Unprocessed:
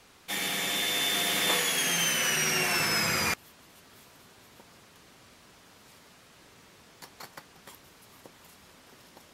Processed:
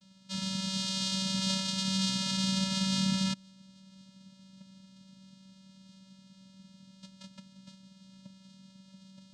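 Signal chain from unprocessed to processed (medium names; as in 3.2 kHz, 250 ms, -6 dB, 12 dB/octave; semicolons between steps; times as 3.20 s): vibrato 0.44 Hz 31 cents; vocoder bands 4, square 191 Hz; ten-band graphic EQ 500 Hz -12 dB, 1 kHz -9 dB, 2 kHz -11 dB, 4 kHz +8 dB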